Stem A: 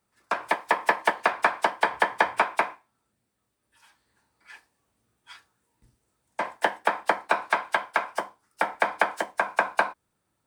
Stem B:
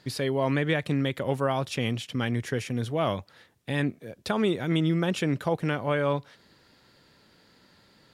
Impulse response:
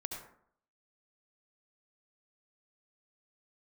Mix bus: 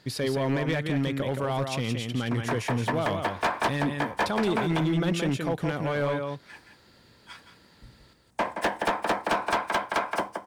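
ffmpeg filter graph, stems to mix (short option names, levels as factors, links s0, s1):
-filter_complex "[0:a]lowshelf=f=470:g=12,adelay=2000,volume=1.06,asplit=2[s0][s1];[s1]volume=0.316[s2];[1:a]alimiter=limit=0.141:level=0:latency=1:release=28,acontrast=64,volume=0.501,asplit=3[s3][s4][s5];[s4]volume=0.531[s6];[s5]apad=whole_len=549925[s7];[s0][s7]sidechaincompress=threshold=0.00794:ratio=6:attack=9.5:release=302[s8];[s2][s6]amix=inputs=2:normalize=0,aecho=0:1:172:1[s9];[s8][s3][s9]amix=inputs=3:normalize=0,asoftclip=type=hard:threshold=0.1"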